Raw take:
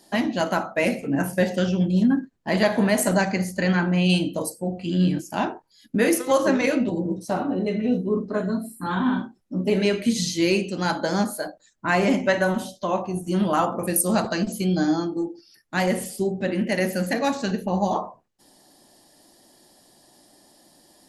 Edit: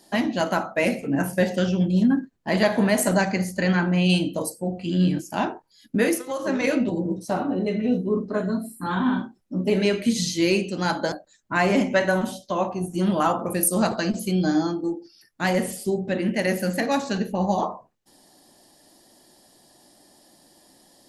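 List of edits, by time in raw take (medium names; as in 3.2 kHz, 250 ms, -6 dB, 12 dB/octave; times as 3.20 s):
5.99–6.71 s: dip -11 dB, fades 0.36 s
11.12–11.45 s: delete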